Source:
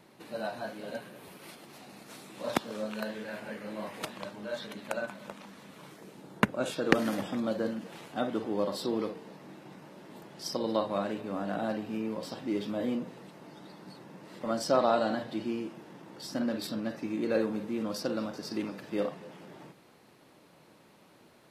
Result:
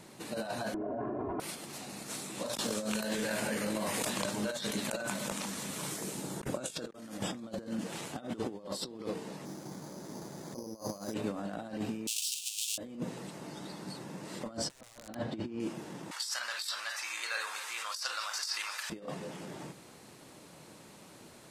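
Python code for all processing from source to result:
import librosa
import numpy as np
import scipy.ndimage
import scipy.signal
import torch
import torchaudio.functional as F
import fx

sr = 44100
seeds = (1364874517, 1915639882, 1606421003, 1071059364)

y = fx.chain(x, sr, fx.lowpass(hz=1100.0, slope=24),
    fx.comb(ms=2.9, depth=0.95),
    fx.env_flatten(amount_pct=100), at=(0.74, 1.4))
y = fx.chain(y, sr, fx.over_compress(threshold_db=-40.0, ratio=-1.0),
    fx.high_shelf(hz=5200.0, db=8.0), at=(2.46, 6.87))
y = fx.chain(y, sr, fx.lowpass(hz=1500.0, slope=6),
    fx.resample_bad(factor=8, down='filtered', up='hold'), at=(9.45, 11.14))
y = fx.chain(y, sr, fx.halfwave_hold(),
    fx.steep_highpass(hz=2600.0, slope=96), at=(12.07, 12.78))
y = fx.chain(y, sr, fx.lowpass(hz=1900.0, slope=6),
    fx.peak_eq(hz=71.0, db=12.5, octaves=0.51),
    fx.overflow_wrap(gain_db=21.0), at=(14.57, 15.6))
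y = fx.chain(y, sr, fx.highpass(hz=1100.0, slope=24),
    fx.env_flatten(amount_pct=50), at=(16.11, 18.9))
y = fx.peak_eq(y, sr, hz=7800.0, db=11.0, octaves=1.2)
y = fx.over_compress(y, sr, threshold_db=-37.0, ratio=-0.5)
y = fx.low_shelf(y, sr, hz=150.0, db=5.5)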